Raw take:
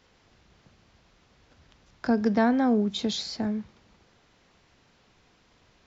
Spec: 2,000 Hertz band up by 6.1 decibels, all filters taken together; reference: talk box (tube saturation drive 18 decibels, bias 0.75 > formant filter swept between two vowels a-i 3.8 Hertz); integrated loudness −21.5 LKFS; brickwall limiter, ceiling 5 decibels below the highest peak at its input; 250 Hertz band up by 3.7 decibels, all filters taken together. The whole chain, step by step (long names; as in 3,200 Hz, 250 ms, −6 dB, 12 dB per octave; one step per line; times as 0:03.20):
parametric band 250 Hz +4 dB
parametric band 2,000 Hz +8 dB
brickwall limiter −14 dBFS
tube saturation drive 18 dB, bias 0.75
formant filter swept between two vowels a-i 3.8 Hz
level +19.5 dB